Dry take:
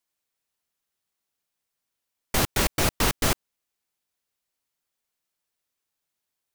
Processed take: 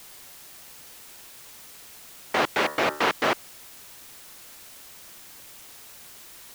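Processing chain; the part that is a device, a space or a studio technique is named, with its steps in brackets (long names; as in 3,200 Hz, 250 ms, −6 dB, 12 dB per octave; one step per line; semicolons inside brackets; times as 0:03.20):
wax cylinder (band-pass filter 390–2,500 Hz; tape wow and flutter; white noise bed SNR 14 dB)
0:02.46–0:03.06: hum removal 74.9 Hz, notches 26
level +5.5 dB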